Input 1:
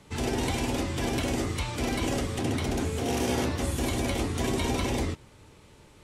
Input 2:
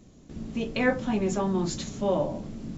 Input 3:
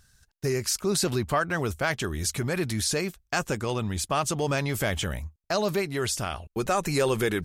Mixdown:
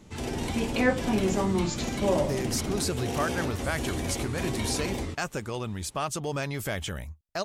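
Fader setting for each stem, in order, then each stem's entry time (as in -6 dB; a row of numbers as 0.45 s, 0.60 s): -4.0 dB, 0.0 dB, -4.5 dB; 0.00 s, 0.00 s, 1.85 s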